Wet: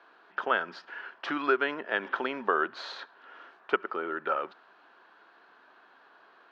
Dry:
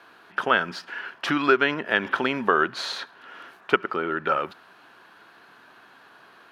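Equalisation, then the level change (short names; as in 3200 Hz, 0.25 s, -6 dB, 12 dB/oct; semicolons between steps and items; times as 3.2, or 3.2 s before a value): HPF 340 Hz 12 dB/oct; air absorption 180 m; bell 2400 Hz -3.5 dB 1 oct; -4.0 dB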